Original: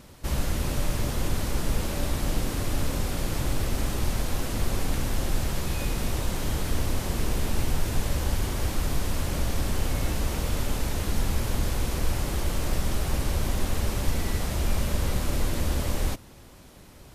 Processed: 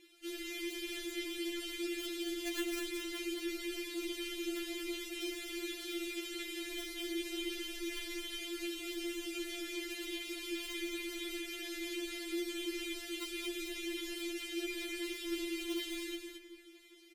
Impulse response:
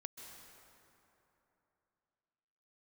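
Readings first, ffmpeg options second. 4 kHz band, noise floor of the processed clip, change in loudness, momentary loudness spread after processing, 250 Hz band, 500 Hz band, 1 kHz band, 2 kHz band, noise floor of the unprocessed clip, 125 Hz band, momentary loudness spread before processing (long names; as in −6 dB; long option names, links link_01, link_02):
−3.0 dB, −55 dBFS, −10.0 dB, 3 LU, −6.0 dB, −7.0 dB, −20.0 dB, −4.5 dB, −48 dBFS, below −40 dB, 1 LU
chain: -filter_complex "[0:a]aemphasis=mode=production:type=75fm,bandreject=frequency=55.68:width_type=h:width=4,bandreject=frequency=111.36:width_type=h:width=4,bandreject=frequency=167.04:width_type=h:width=4,bandreject=frequency=222.72:width_type=h:width=4,flanger=delay=3.2:depth=9.6:regen=12:speed=0.38:shape=triangular,asplit=3[link_01][link_02][link_03];[link_01]bandpass=frequency=270:width_type=q:width=8,volume=0dB[link_04];[link_02]bandpass=frequency=2290:width_type=q:width=8,volume=-6dB[link_05];[link_03]bandpass=frequency=3010:width_type=q:width=8,volume=-9dB[link_06];[link_04][link_05][link_06]amix=inputs=3:normalize=0,asplit=2[link_07][link_08];[link_08]acrusher=bits=5:mix=0:aa=0.000001,volume=-6dB[link_09];[link_07][link_09]amix=inputs=2:normalize=0,aecho=1:1:219:0.501,asplit=2[link_10][link_11];[1:a]atrim=start_sample=2205,lowpass=2000[link_12];[link_11][link_12]afir=irnorm=-1:irlink=0,volume=-3dB[link_13];[link_10][link_13]amix=inputs=2:normalize=0,afftfilt=real='re*4*eq(mod(b,16),0)':imag='im*4*eq(mod(b,16),0)':win_size=2048:overlap=0.75,volume=10.5dB"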